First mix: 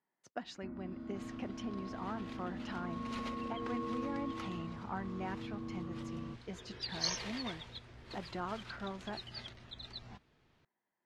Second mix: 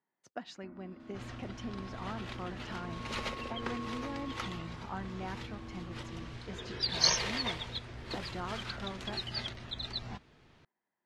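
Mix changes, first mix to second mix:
first sound: add bass shelf 350 Hz -10.5 dB; second sound +9.0 dB

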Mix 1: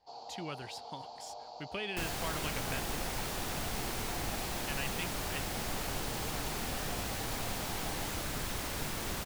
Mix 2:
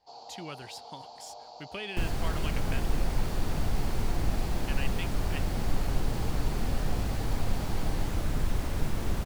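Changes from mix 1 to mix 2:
second sound: add tilt EQ -3 dB/octave; master: add treble shelf 5.7 kHz +4.5 dB

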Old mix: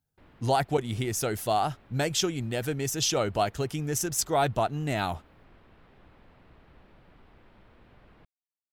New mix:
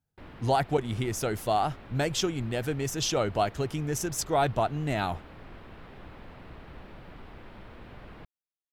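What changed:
speech: add treble shelf 4.9 kHz -6 dB; background +10.0 dB

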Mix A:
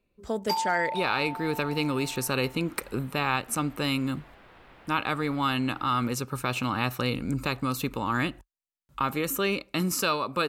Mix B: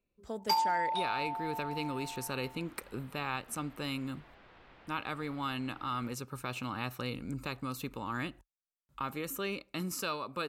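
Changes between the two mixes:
speech -9.5 dB; second sound: add four-pole ladder low-pass 7.5 kHz, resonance 20%

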